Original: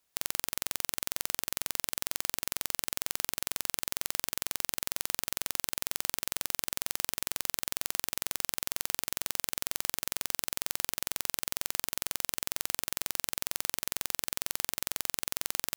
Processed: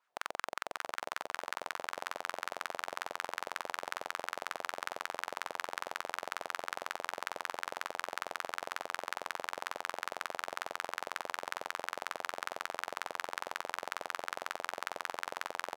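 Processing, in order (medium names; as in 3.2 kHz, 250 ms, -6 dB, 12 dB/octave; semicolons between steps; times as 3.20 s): wah-wah 5.4 Hz 590–1500 Hz, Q 2.7; feedback delay 600 ms, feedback 59%, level -15 dB; trim +10.5 dB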